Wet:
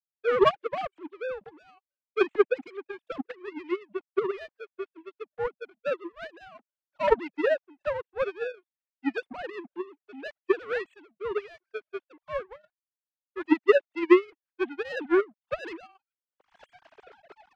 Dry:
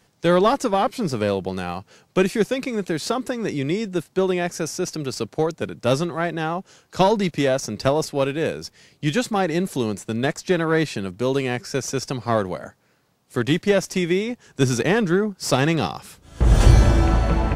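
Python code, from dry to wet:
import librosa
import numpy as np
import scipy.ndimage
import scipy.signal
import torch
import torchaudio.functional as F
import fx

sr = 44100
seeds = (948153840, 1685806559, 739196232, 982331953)

y = fx.sine_speech(x, sr)
y = fx.power_curve(y, sr, exponent=2.0)
y = y * librosa.db_to_amplitude(-1.0)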